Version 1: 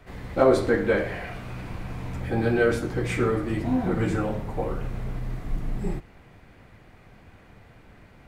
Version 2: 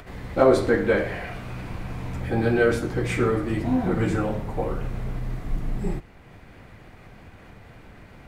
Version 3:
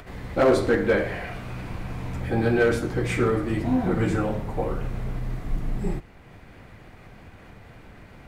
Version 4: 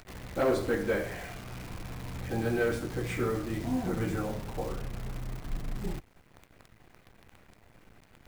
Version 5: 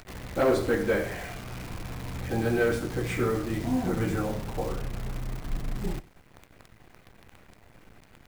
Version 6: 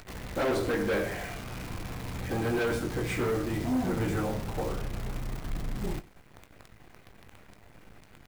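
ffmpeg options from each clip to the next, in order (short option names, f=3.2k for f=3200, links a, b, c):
-af "acompressor=mode=upward:threshold=-41dB:ratio=2.5,volume=1.5dB"
-af "asoftclip=type=hard:threshold=-13dB"
-af "acrusher=bits=7:dc=4:mix=0:aa=0.000001,volume=-8dB"
-af "aecho=1:1:94:0.0944,volume=3.5dB"
-filter_complex "[0:a]asoftclip=type=hard:threshold=-25dB,asplit=2[a][b];[b]adelay=20,volume=-12dB[c];[a][c]amix=inputs=2:normalize=0"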